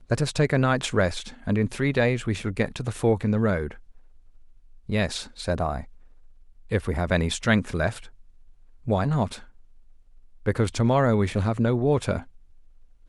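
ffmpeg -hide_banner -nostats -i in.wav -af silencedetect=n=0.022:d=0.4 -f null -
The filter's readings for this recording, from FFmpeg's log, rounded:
silence_start: 3.71
silence_end: 4.89 | silence_duration: 1.18
silence_start: 5.83
silence_end: 6.71 | silence_duration: 0.88
silence_start: 7.99
silence_end: 8.87 | silence_duration: 0.88
silence_start: 9.36
silence_end: 10.46 | silence_duration: 1.10
silence_start: 12.20
silence_end: 13.08 | silence_duration: 0.88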